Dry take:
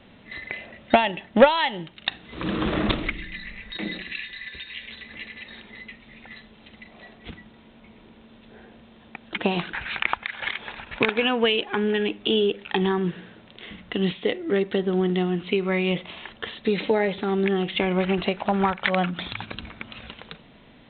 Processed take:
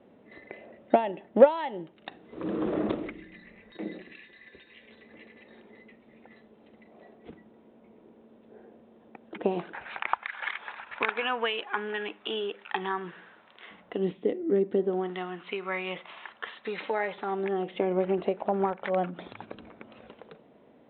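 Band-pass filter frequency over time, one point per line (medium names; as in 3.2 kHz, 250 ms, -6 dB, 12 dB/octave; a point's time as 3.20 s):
band-pass filter, Q 1.3
9.53 s 430 Hz
10.31 s 1.2 kHz
13.64 s 1.2 kHz
14.20 s 310 Hz
14.73 s 310 Hz
15.15 s 1.2 kHz
17.05 s 1.2 kHz
17.81 s 470 Hz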